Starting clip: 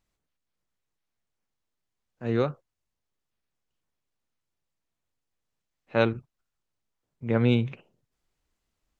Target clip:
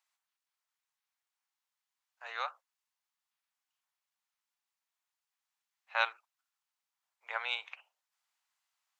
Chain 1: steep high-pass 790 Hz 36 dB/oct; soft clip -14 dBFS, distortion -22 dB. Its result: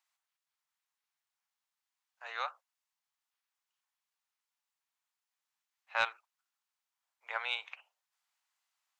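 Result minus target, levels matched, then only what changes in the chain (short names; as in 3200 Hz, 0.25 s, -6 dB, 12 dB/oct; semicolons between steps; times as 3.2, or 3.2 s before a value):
soft clip: distortion +17 dB
change: soft clip -4.5 dBFS, distortion -39 dB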